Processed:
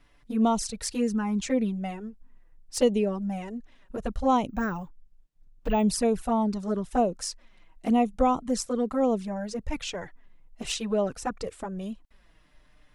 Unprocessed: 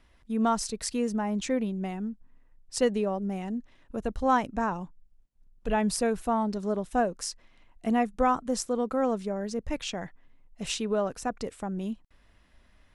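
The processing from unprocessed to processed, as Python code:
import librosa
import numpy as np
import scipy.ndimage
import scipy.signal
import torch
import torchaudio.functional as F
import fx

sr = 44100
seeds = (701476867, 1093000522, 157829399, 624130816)

y = fx.resample_bad(x, sr, factor=2, down='filtered', up='hold', at=(4.49, 5.83))
y = fx.env_flanger(y, sr, rest_ms=7.2, full_db=-22.0)
y = F.gain(torch.from_numpy(y), 4.0).numpy()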